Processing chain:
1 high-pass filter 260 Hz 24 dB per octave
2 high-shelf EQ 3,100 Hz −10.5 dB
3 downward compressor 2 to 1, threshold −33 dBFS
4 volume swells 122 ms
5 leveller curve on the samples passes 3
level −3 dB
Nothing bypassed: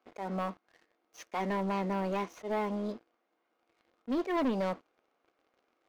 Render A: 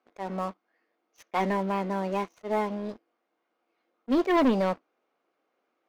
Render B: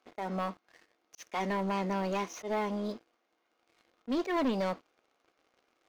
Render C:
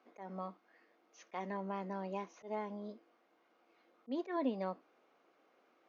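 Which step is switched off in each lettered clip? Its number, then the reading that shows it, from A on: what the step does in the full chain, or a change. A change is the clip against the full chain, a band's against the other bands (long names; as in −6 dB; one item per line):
3, average gain reduction 3.0 dB
2, 4 kHz band +3.5 dB
5, change in crest factor +8.0 dB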